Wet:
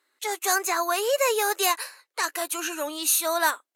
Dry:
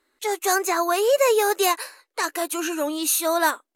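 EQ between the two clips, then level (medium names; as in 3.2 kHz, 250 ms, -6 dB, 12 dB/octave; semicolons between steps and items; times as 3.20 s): high-pass 850 Hz 6 dB/octave; 0.0 dB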